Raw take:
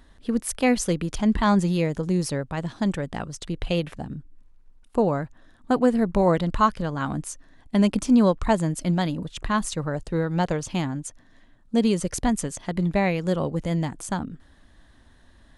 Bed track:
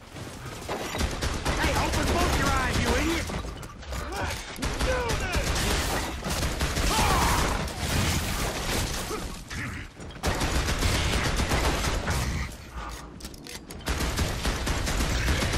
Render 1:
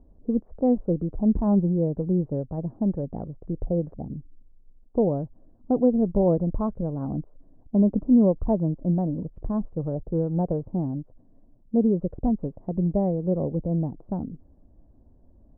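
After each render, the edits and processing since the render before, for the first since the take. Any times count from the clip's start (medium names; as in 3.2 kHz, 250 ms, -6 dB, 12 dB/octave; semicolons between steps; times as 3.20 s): inverse Chebyshev low-pass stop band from 3.8 kHz, stop band 80 dB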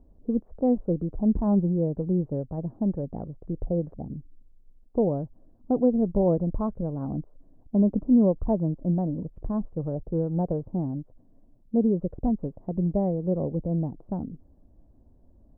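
trim -1.5 dB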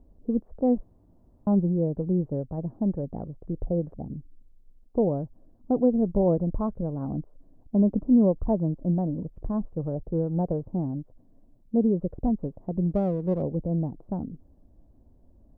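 0.83–1.47 s: room tone; 12.91–13.42 s: sliding maximum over 5 samples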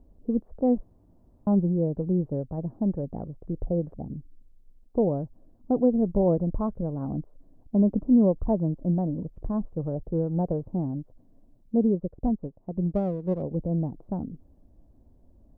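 11.95–13.51 s: upward expansion, over -43 dBFS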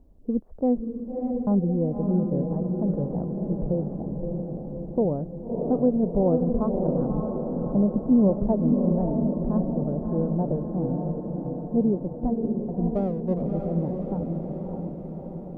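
echo that smears into a reverb 609 ms, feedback 62%, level -3.5 dB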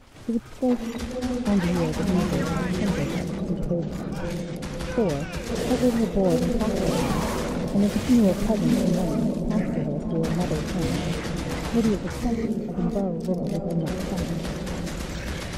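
add bed track -7 dB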